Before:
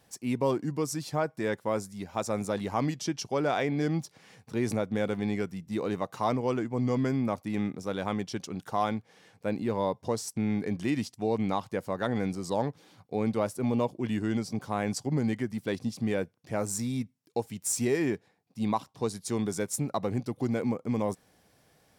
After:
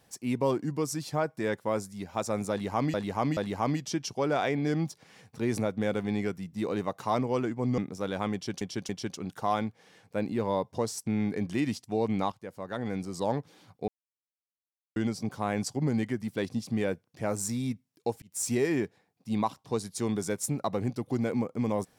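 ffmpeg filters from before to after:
ffmpeg -i in.wav -filter_complex "[0:a]asplit=10[link_01][link_02][link_03][link_04][link_05][link_06][link_07][link_08][link_09][link_10];[link_01]atrim=end=2.942[link_11];[link_02]atrim=start=2.508:end=2.942[link_12];[link_03]atrim=start=2.508:end=6.922[link_13];[link_04]atrim=start=7.638:end=8.472[link_14];[link_05]atrim=start=8.188:end=8.472[link_15];[link_06]atrim=start=8.188:end=11.62,asetpts=PTS-STARTPTS,afade=type=out:start_time=3.428:duration=0.004:curve=hsin:silence=0.223872[link_16];[link_07]atrim=start=11.62:end=13.18,asetpts=PTS-STARTPTS,afade=type=in:duration=1.01:silence=0.223872,afade=type=out:start_time=1.556:duration=0.004:curve=hsin[link_17];[link_08]atrim=start=13.18:end=14.26,asetpts=PTS-STARTPTS,volume=0[link_18];[link_09]atrim=start=14.26:end=17.52,asetpts=PTS-STARTPTS,afade=type=in:duration=0.004:curve=hsin,afade=type=out:start_time=3.256:duration=0.004:curve=hsin[link_19];[link_10]atrim=start=17.52,asetpts=PTS-STARTPTS,afade=type=in:duration=0.26[link_20];[link_11][link_12]acrossfade=duration=0.004:curve1=hsin:curve2=hsin[link_21];[link_21][link_13]acrossfade=duration=0.004:curve1=hsin:curve2=hsin[link_22];[link_22][link_14]acrossfade=duration=0.004:curve1=hsin:curve2=hsin[link_23];[link_23][link_15]acrossfade=duration=0.004:curve1=hsin:curve2=hsin[link_24];[link_16][link_17][link_18][link_19][link_20]concat=n=5:v=0:a=1[link_25];[link_24][link_25]acrossfade=duration=0.004:curve1=hsin:curve2=hsin" out.wav

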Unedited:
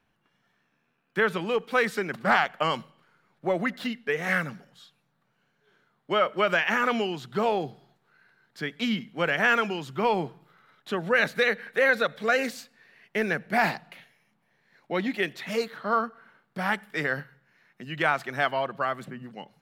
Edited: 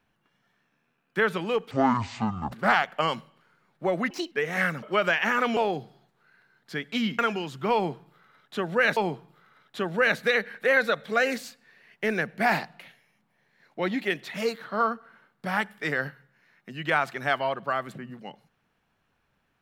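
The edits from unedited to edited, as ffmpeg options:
ffmpeg -i in.wav -filter_complex "[0:a]asplit=9[link_01][link_02][link_03][link_04][link_05][link_06][link_07][link_08][link_09];[link_01]atrim=end=1.714[link_10];[link_02]atrim=start=1.71:end=2.14,asetpts=PTS-STARTPTS,asetrate=23373,aresample=44100,atrim=end_sample=35779,asetpts=PTS-STARTPTS[link_11];[link_03]atrim=start=2.136:end=3.724[link_12];[link_04]atrim=start=3.72:end=4.03,asetpts=PTS-STARTPTS,asetrate=63504,aresample=44100[link_13];[link_05]atrim=start=4.026:end=4.542[link_14];[link_06]atrim=start=6.278:end=7.022[link_15];[link_07]atrim=start=7.438:end=9.062[link_16];[link_08]atrim=start=9.528:end=11.312[link_17];[link_09]atrim=start=10.088[link_18];[link_10][link_11]acrossfade=duration=0.004:curve1=hsin:curve2=hsin[link_19];[link_19][link_12]acrossfade=duration=0.004:curve1=hsin:curve2=hsin[link_20];[link_20][link_13]acrossfade=duration=0.004:curve1=hsin:curve2=hsin[link_21];[link_21][link_14]acrossfade=duration=0.004:curve1=hsin:curve2=hsin[link_22];[link_22][link_15]acrossfade=duration=0.004:curve1=hsin:curve2=hsin[link_23];[link_23][link_16]acrossfade=duration=0.004:curve1=hsin:curve2=hsin[link_24];[link_24][link_17]acrossfade=duration=0.004:curve1=hsin:curve2=hsin[link_25];[link_25][link_18]acrossfade=duration=0.004:curve1=hsin:curve2=hsin" out.wav

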